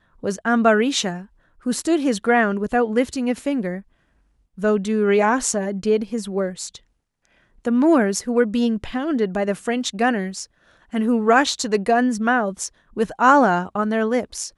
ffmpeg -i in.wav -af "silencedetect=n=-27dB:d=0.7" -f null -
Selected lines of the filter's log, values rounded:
silence_start: 3.79
silence_end: 4.62 | silence_duration: 0.84
silence_start: 6.76
silence_end: 7.65 | silence_duration: 0.90